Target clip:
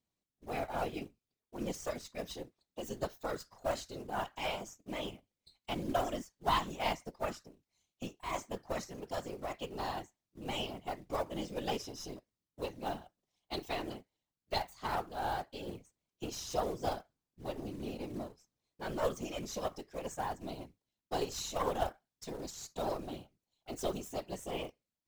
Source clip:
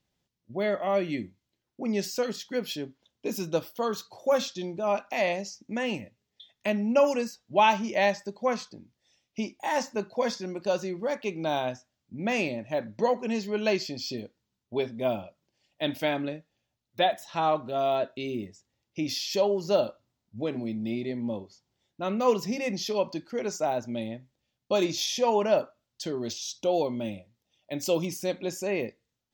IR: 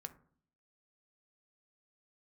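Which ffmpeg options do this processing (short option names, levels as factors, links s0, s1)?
-af "aeval=exprs='if(lt(val(0),0),0.447*val(0),val(0))':c=same,acrusher=bits=5:mode=log:mix=0:aa=0.000001,afftfilt=real='hypot(re,im)*cos(2*PI*random(0))':imag='hypot(re,im)*sin(2*PI*random(1))':win_size=512:overlap=0.75,asetrate=51597,aresample=44100,volume=0.794"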